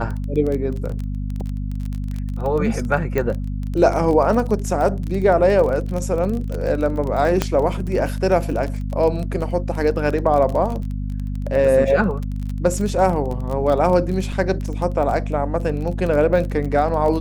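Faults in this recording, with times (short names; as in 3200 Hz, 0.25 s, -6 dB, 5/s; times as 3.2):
crackle 22/s -24 dBFS
hum 50 Hz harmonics 5 -25 dBFS
3.18 pop -10 dBFS
7.42 pop -4 dBFS
14.32 gap 4.8 ms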